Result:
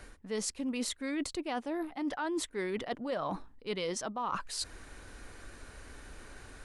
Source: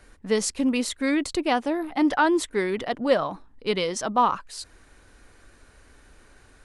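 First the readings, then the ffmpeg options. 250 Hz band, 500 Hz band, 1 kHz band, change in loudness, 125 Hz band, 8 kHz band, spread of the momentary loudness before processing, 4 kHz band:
−11.5 dB, −11.5 dB, −13.0 dB, −11.5 dB, −7.0 dB, −6.5 dB, 11 LU, −8.0 dB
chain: -af "alimiter=limit=-13.5dB:level=0:latency=1:release=443,areverse,acompressor=threshold=-36dB:ratio=12,areverse,volume=4dB"

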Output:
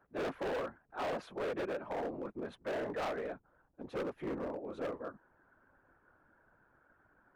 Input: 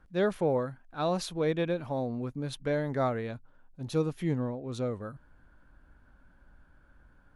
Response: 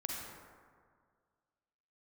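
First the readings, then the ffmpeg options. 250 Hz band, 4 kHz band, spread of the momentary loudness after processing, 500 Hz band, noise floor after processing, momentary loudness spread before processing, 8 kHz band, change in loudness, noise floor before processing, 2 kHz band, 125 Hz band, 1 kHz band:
−10.0 dB, −8.5 dB, 7 LU, −7.0 dB, −72 dBFS, 9 LU, below −10 dB, −8.0 dB, −61 dBFS, −3.5 dB, −19.0 dB, −5.0 dB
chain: -filter_complex "[0:a]afftfilt=real='hypot(re,im)*cos(2*PI*random(0))':imag='hypot(re,im)*sin(2*PI*random(1))':win_size=512:overlap=0.75,acrossover=split=290 2100:gain=0.1 1 0.0631[link_01][link_02][link_03];[link_01][link_02][link_03]amix=inputs=3:normalize=0,asoftclip=type=hard:threshold=-40dB,volume=6dB"

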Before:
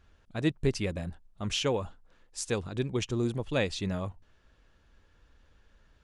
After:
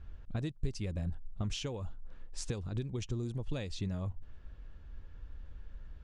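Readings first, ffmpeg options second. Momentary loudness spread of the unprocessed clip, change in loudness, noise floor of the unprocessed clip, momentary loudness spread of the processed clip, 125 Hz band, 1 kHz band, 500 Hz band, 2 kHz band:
12 LU, −7.0 dB, −64 dBFS, 16 LU, −2.5 dB, −11.5 dB, −12.0 dB, −13.0 dB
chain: -filter_complex "[0:a]acrossover=split=4600[link_01][link_02];[link_01]acompressor=threshold=-41dB:ratio=8[link_03];[link_03][link_02]amix=inputs=2:normalize=0,aemphasis=mode=reproduction:type=bsi,volume=1dB"

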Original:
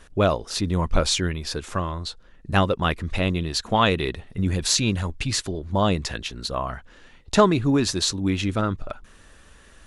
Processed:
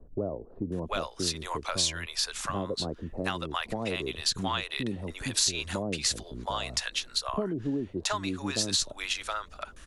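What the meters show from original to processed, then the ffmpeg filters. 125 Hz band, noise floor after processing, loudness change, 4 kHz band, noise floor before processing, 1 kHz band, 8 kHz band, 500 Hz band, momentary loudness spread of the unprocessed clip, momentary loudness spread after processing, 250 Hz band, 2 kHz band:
−13.0 dB, −51 dBFS, −7.0 dB, −2.5 dB, −51 dBFS, −9.0 dB, −2.0 dB, −10.0 dB, 10 LU, 8 LU, −10.0 dB, −5.5 dB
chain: -filter_complex "[0:a]acrossover=split=220[link_01][link_02];[link_01]acompressor=threshold=-39dB:ratio=10[link_03];[link_03][link_02]amix=inputs=2:normalize=0,acrossover=split=660[link_04][link_05];[link_05]adelay=720[link_06];[link_04][link_06]amix=inputs=2:normalize=0,acrossover=split=130[link_07][link_08];[link_08]acompressor=threshold=-30dB:ratio=4[link_09];[link_07][link_09]amix=inputs=2:normalize=0,adynamicequalizer=threshold=0.00631:dfrequency=3100:dqfactor=0.7:tfrequency=3100:tqfactor=0.7:attack=5:release=100:ratio=0.375:range=3:mode=boostabove:tftype=highshelf"

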